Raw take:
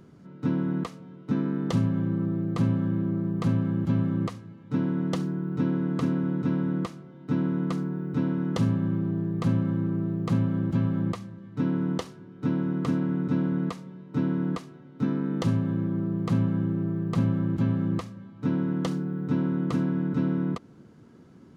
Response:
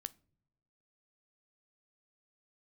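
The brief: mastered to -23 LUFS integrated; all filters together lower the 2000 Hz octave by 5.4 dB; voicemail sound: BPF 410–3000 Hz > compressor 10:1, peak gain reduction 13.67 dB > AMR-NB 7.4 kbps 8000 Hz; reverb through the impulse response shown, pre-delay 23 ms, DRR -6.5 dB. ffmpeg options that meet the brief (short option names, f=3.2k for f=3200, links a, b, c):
-filter_complex "[0:a]equalizer=f=2k:t=o:g=-7,asplit=2[a][b];[1:a]atrim=start_sample=2205,adelay=23[c];[b][c]afir=irnorm=-1:irlink=0,volume=10.5dB[d];[a][d]amix=inputs=2:normalize=0,highpass=410,lowpass=3k,acompressor=threshold=-35dB:ratio=10,volume=17dB" -ar 8000 -c:a libopencore_amrnb -b:a 7400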